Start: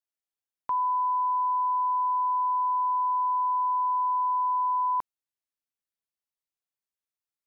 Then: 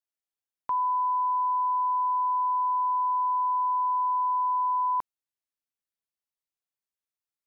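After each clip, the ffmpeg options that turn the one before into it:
-af anull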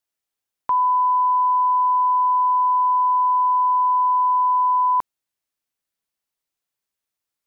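-af "acontrast=37,volume=2.5dB"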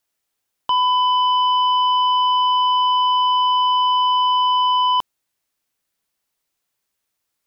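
-af "aeval=exprs='0.188*sin(PI/2*1.58*val(0)/0.188)':c=same"

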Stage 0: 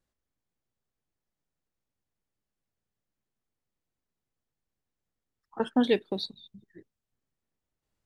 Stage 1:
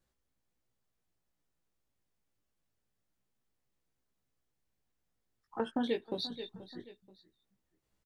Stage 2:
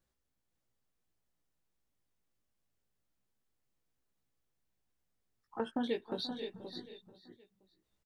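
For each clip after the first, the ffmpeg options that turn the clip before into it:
-af "aecho=1:1:481|962:0.0794|0.027,flanger=delay=15.5:depth=2.1:speed=0.25,acompressor=threshold=-38dB:ratio=3,volume=5dB"
-af "aecho=1:1:525:0.376,volume=-2dB"

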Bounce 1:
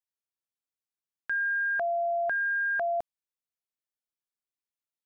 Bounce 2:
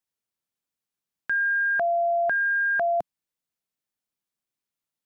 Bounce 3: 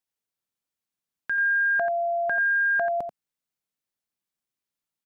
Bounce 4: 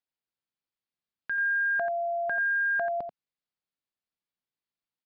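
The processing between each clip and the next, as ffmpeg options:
-af "equalizer=f=180:w=1:g=6.5,volume=4.5dB"
-af "aecho=1:1:87:0.376,volume=-1.5dB"
-af "aresample=11025,aresample=44100,volume=-4dB"

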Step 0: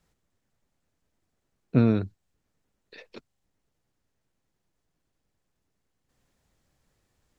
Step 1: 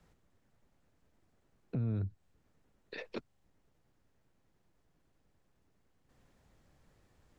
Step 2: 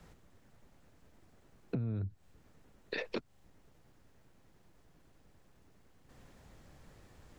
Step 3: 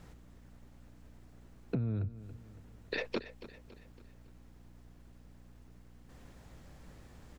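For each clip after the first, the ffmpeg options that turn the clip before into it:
-filter_complex "[0:a]highshelf=f=3.1k:g=-9,acrossover=split=120[a][b];[b]acompressor=threshold=-35dB:ratio=10[c];[a][c]amix=inputs=2:normalize=0,alimiter=level_in=8.5dB:limit=-24dB:level=0:latency=1:release=187,volume=-8.5dB,volume=5.5dB"
-af "acompressor=threshold=-43dB:ratio=6,volume=9.5dB"
-af "aeval=exprs='val(0)+0.00126*(sin(2*PI*60*n/s)+sin(2*PI*2*60*n/s)/2+sin(2*PI*3*60*n/s)/3+sin(2*PI*4*60*n/s)/4+sin(2*PI*5*60*n/s)/5)':c=same,aecho=1:1:279|558|837|1116:0.178|0.0818|0.0376|0.0173,volume=2dB"

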